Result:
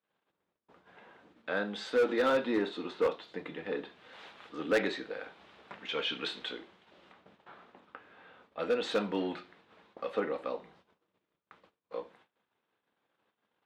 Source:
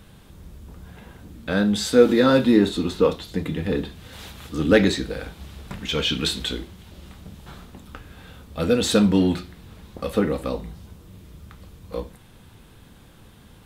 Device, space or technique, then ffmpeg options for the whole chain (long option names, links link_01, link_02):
walkie-talkie: -filter_complex "[0:a]asettb=1/sr,asplit=3[link_01][link_02][link_03];[link_01]atrim=end=7.124[link_04];[link_02]atrim=start=7.12:end=8.59,asetpts=PTS-STARTPTS,afade=type=in:duration=0.004:curve=qsin,afade=type=out:start_time=1.466:duration=0.004:curve=qsin,acrossover=split=2800[link_05][link_06];[link_06]acompressor=threshold=-58dB:ratio=4:attack=1:release=60[link_07];[link_05][link_07]amix=inputs=2:normalize=0[link_08];[link_03]atrim=start=8.586[link_09];[link_04][link_08]acrossfade=duration=0.004:curve1=hsin:curve2=qsin[link_10];[link_10][link_09]acrossfade=duration=0.004:curve1=qsin:curve2=hsin,highpass=480,lowpass=2600,asoftclip=type=hard:threshold=-16.5dB,agate=range=-29dB:threshold=-55dB:ratio=16:detection=peak,volume=-5.5dB"